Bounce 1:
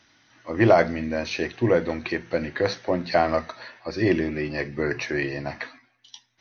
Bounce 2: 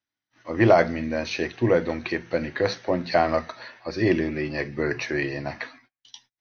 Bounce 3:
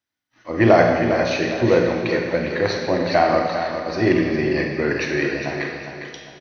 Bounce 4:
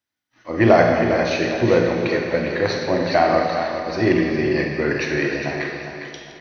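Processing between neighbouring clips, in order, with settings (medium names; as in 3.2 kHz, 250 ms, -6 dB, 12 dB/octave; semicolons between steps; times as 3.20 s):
gate -55 dBFS, range -30 dB
feedback delay 405 ms, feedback 37%, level -8 dB; Schroeder reverb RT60 1.5 s, combs from 31 ms, DRR 2 dB; trim +2.5 dB
backward echo that repeats 173 ms, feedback 48%, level -12 dB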